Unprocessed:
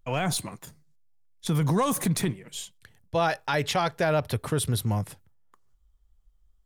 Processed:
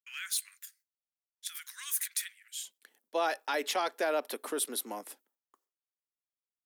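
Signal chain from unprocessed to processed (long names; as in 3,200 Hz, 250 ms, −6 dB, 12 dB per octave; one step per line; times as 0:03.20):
Butterworth high-pass 1,500 Hz 48 dB per octave, from 0:02.63 260 Hz
noise gate with hold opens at −59 dBFS
high-shelf EQ 11,000 Hz +11.5 dB
level −5.5 dB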